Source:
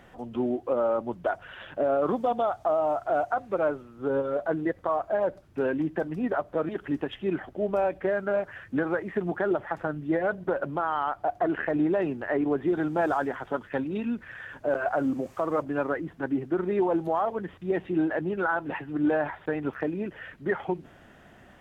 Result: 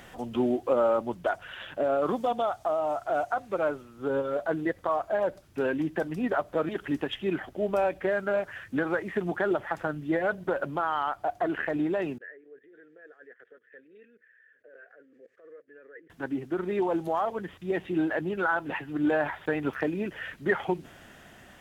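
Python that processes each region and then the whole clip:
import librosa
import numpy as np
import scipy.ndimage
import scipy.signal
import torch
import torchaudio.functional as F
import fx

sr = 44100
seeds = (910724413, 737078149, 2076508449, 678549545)

y = fx.chain(x, sr, fx.level_steps(step_db=19),
    fx.double_bandpass(hz=900.0, octaves=1.9), at=(12.18, 16.1))
y = fx.rider(y, sr, range_db=10, speed_s=2.0)
y = fx.high_shelf(y, sr, hz=2600.0, db=11.5)
y = y * librosa.db_to_amplitude(-2.0)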